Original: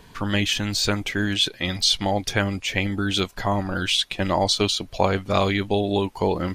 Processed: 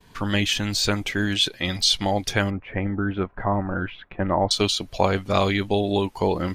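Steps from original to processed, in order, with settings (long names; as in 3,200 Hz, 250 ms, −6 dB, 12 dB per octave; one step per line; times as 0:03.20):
0:02.50–0:04.51: low-pass filter 1,700 Hz 24 dB per octave
downward expander −44 dBFS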